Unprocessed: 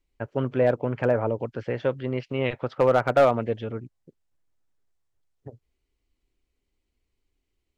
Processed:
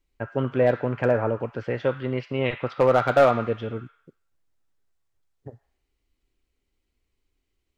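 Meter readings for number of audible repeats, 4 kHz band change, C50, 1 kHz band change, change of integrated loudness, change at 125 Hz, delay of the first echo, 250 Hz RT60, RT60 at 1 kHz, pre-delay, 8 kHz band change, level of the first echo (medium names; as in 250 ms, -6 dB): no echo, +2.0 dB, 10.0 dB, +2.0 dB, +1.0 dB, +1.0 dB, no echo, 0.70 s, 0.70 s, 3 ms, no reading, no echo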